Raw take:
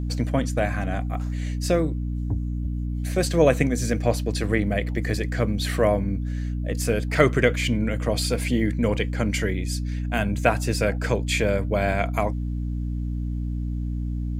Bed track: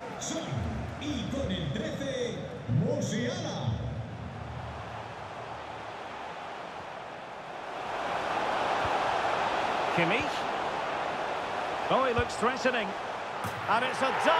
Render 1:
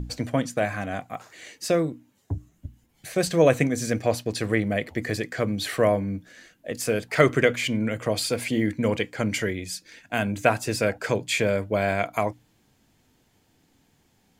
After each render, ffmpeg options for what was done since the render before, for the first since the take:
-af "bandreject=f=60:t=h:w=6,bandreject=f=120:t=h:w=6,bandreject=f=180:t=h:w=6,bandreject=f=240:t=h:w=6,bandreject=f=300:t=h:w=6"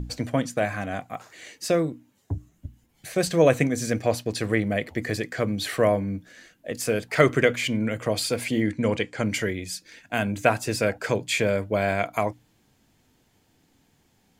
-filter_complex "[0:a]asettb=1/sr,asplit=3[s0][s1][s2];[s0]atrim=end=8.604[s3];[s1]atrim=start=8.6:end=9.23,asetpts=PTS-STARTPTS,afade=t=in:d=0.004:c=qsin,afade=t=out:st=0.626:d=0.004:c=qsin,lowpass=f=10000:w=0.5412,lowpass=f=10000:w=1.3066[s4];[s2]atrim=start=9.226[s5];[s3][s4]acrossfade=d=0.004:c1=hsin:c2=qsin[s6];[s6][s5]acrossfade=d=0.004:c1=qsin:c2=hsin"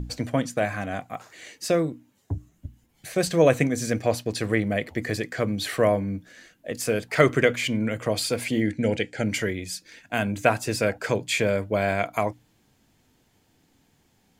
-filter_complex "[0:a]asettb=1/sr,asplit=3[s0][s1][s2];[s0]atrim=end=8.594[s3];[s1]atrim=start=8.59:end=9.28,asetpts=PTS-STARTPTS,afade=t=in:d=0.004:c=qsin,afade=t=out:st=0.686:d=0.004:c=qsin,asuperstop=centerf=1100:order=4:qfactor=2.3[s4];[s2]atrim=start=9.276[s5];[s3][s4]acrossfade=d=0.004:c1=hsin:c2=qsin[s6];[s6][s5]acrossfade=d=0.004:c1=qsin:c2=hsin"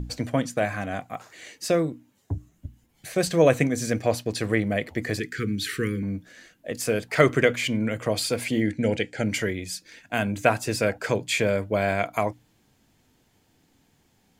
-filter_complex "[0:a]asettb=1/sr,asplit=3[s0][s1][s2];[s0]atrim=end=5.194[s3];[s1]atrim=start=5.19:end=6.03,asetpts=PTS-STARTPTS,afade=t=in:d=0.004:c=qsin,afade=t=out:st=0.836:d=0.004:c=qsin,asuperstop=centerf=750:order=12:qfactor=0.92[s4];[s2]atrim=start=6.026[s5];[s3][s4]acrossfade=d=0.004:c1=hsin:c2=qsin[s6];[s6][s5]acrossfade=d=0.004:c1=qsin:c2=hsin"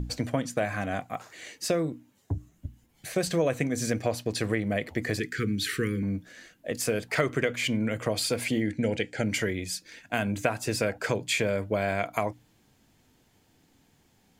-af "acompressor=threshold=0.0708:ratio=4"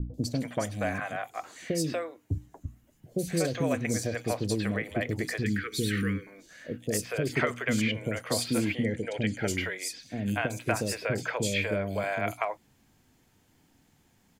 -filter_complex "[0:a]acrossover=split=500|3800[s0][s1][s2];[s2]adelay=140[s3];[s1]adelay=240[s4];[s0][s4][s3]amix=inputs=3:normalize=0"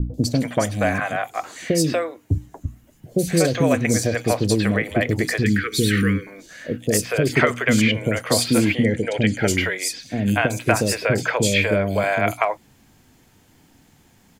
-af "volume=3.16"

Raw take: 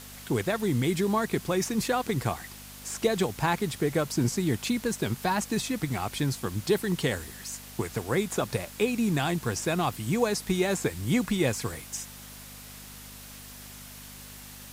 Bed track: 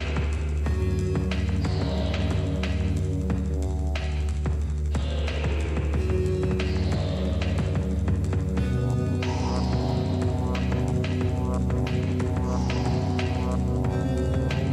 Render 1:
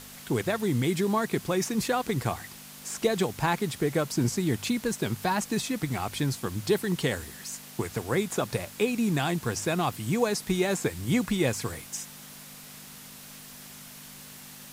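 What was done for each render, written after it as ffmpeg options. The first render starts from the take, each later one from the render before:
-af "bandreject=f=50:t=h:w=4,bandreject=f=100:t=h:w=4"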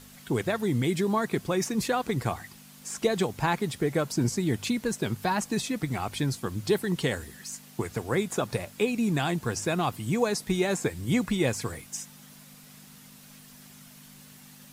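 -af "afftdn=nr=7:nf=-46"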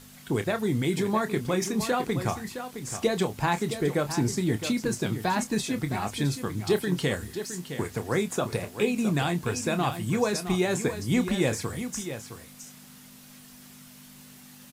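-filter_complex "[0:a]asplit=2[s0][s1];[s1]adelay=28,volume=0.299[s2];[s0][s2]amix=inputs=2:normalize=0,asplit=2[s3][s4];[s4]aecho=0:1:664:0.316[s5];[s3][s5]amix=inputs=2:normalize=0"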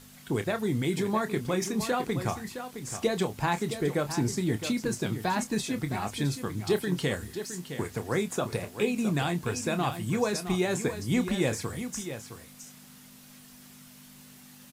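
-af "volume=0.794"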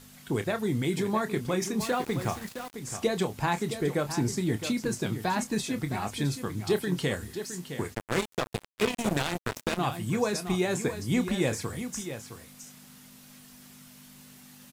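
-filter_complex "[0:a]asettb=1/sr,asplit=3[s0][s1][s2];[s0]atrim=end=1.804[s3];[s1]atrim=start=1.8:end=2.74,asetpts=PTS-STARTPTS,afade=t=in:d=0.004:c=qsin,afade=t=out:st=0.936:d=0.004:c=qsin,aeval=exprs='val(0)*gte(abs(val(0)),0.0112)':c=same[s4];[s2]atrim=start=2.736[s5];[s3][s4]acrossfade=d=0.004:c1=hsin:c2=qsin[s6];[s6][s5]acrossfade=d=0.004:c1=qsin:c2=hsin,asplit=3[s7][s8][s9];[s7]afade=t=out:st=7.93:d=0.02[s10];[s8]acrusher=bits=3:mix=0:aa=0.5,afade=t=in:st=7.93:d=0.02,afade=t=out:st=9.77:d=0.02[s11];[s9]afade=t=in:st=9.77:d=0.02[s12];[s10][s11][s12]amix=inputs=3:normalize=0"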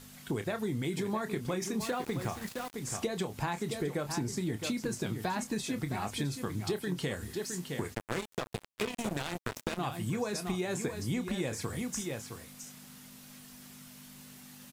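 -af "acompressor=threshold=0.0316:ratio=6"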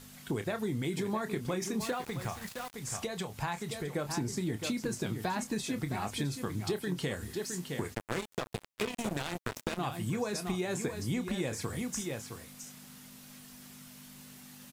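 -filter_complex "[0:a]asettb=1/sr,asplit=3[s0][s1][s2];[s0]atrim=end=1.934[s3];[s1]atrim=start=1.93:end=3.93,asetpts=PTS-STARTPTS,afade=t=in:d=0.004:c=qsin,afade=t=out:st=1.996:d=0.004:c=qsin,equalizer=f=310:t=o:w=1.2:g=-7.5[s4];[s2]atrim=start=3.926[s5];[s3][s4]acrossfade=d=0.004:c1=hsin:c2=qsin[s6];[s6][s5]acrossfade=d=0.004:c1=qsin:c2=hsin"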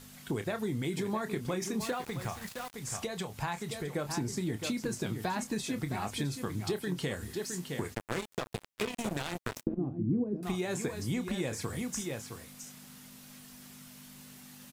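-filter_complex "[0:a]asettb=1/sr,asplit=3[s0][s1][s2];[s0]atrim=end=9.634[s3];[s1]atrim=start=9.63:end=10.43,asetpts=PTS-STARTPTS,afade=t=in:d=0.004:c=qsin,afade=t=out:st=0.796:d=0.004:c=qsin,lowpass=f=300:t=q:w=3.2[s4];[s2]atrim=start=10.426[s5];[s3][s4]acrossfade=d=0.004:c1=hsin:c2=qsin[s6];[s6][s5]acrossfade=d=0.004:c1=qsin:c2=hsin"

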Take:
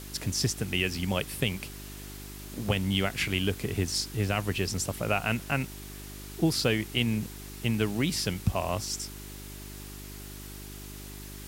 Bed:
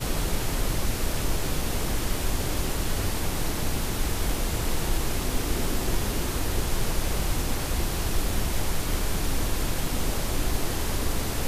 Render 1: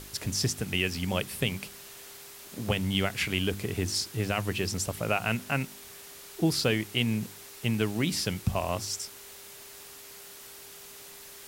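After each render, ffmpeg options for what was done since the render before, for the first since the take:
-af "bandreject=f=50:t=h:w=4,bandreject=f=100:t=h:w=4,bandreject=f=150:t=h:w=4,bandreject=f=200:t=h:w=4,bandreject=f=250:t=h:w=4,bandreject=f=300:t=h:w=4,bandreject=f=350:t=h:w=4"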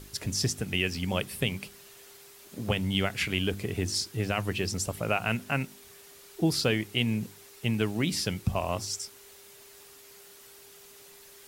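-af "afftdn=nr=6:nf=-47"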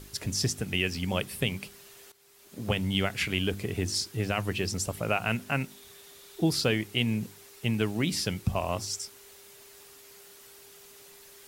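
-filter_complex "[0:a]asettb=1/sr,asplit=3[s0][s1][s2];[s0]atrim=end=5.704[s3];[s1]atrim=start=5.7:end=6.49,asetpts=PTS-STARTPTS,afade=t=in:d=0.004:c=qsin,afade=t=out:st=0.786:d=0.004:c=qsin,equalizer=f=3600:w=7.1:g=8.5[s4];[s2]atrim=start=6.486[s5];[s3][s4]acrossfade=d=0.004:c1=hsin:c2=qsin[s6];[s6][s5]acrossfade=d=0.004:c1=qsin:c2=hsin,asplit=2[s7][s8];[s7]atrim=end=2.12,asetpts=PTS-STARTPTS,afade=t=out:st=2.116:d=0.004:c=hsin:silence=0.16788[s9];[s8]atrim=start=2.12,asetpts=PTS-STARTPTS,afade=t=in:d=0.6:silence=0.16788[s10];[s9][s10]concat=n=2:v=0:a=1"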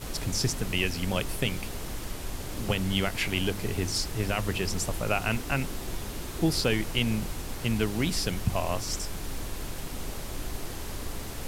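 -filter_complex "[1:a]volume=0.355[s0];[0:a][s0]amix=inputs=2:normalize=0"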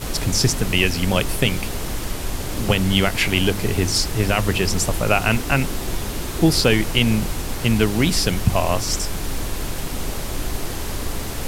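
-af "volume=2.99,alimiter=limit=0.794:level=0:latency=1"

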